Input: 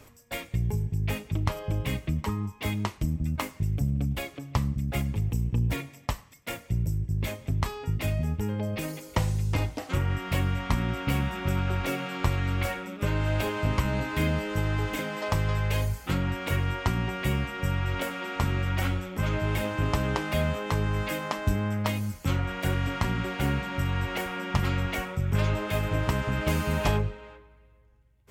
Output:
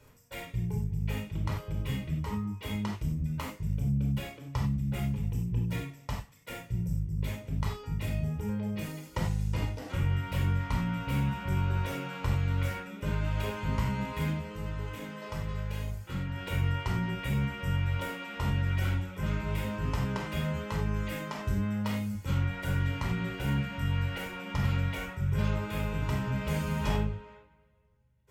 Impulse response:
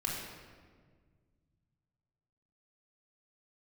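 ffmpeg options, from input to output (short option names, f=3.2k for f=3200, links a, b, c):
-filter_complex "[0:a]asplit=3[a][b][c];[a]afade=t=out:st=14.3:d=0.02[d];[b]flanger=delay=4.2:depth=5.1:regen=-87:speed=1.3:shape=triangular,afade=t=in:st=14.3:d=0.02,afade=t=out:st=16.35:d=0.02[e];[c]afade=t=in:st=16.35:d=0.02[f];[d][e][f]amix=inputs=3:normalize=0[g];[1:a]atrim=start_sample=2205,afade=t=out:st=0.17:d=0.01,atrim=end_sample=7938,asetrate=52920,aresample=44100[h];[g][h]afir=irnorm=-1:irlink=0,volume=-7dB"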